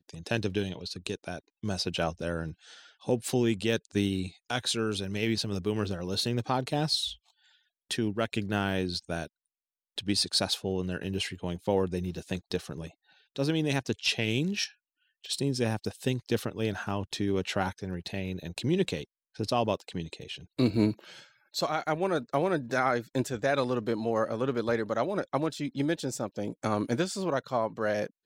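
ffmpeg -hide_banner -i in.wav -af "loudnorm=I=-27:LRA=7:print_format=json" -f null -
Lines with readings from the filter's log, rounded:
"input_i" : "-30.7",
"input_tp" : "-12.6",
"input_lra" : "1.9",
"input_thresh" : "-41.1",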